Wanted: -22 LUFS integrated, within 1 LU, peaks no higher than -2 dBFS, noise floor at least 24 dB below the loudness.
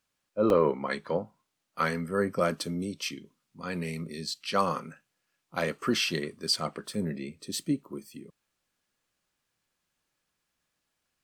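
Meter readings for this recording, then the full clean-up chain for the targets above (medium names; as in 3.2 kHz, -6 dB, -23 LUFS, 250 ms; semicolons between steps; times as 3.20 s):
dropouts 1; longest dropout 1.6 ms; loudness -30.5 LUFS; peak level -11.0 dBFS; loudness target -22.0 LUFS
-> interpolate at 0.50 s, 1.6 ms; trim +8.5 dB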